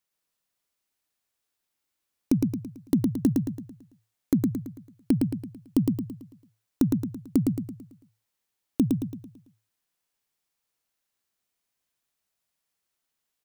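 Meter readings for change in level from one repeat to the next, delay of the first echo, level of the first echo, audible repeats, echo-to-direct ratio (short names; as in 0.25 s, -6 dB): -7.0 dB, 0.111 s, -3.0 dB, 5, -2.0 dB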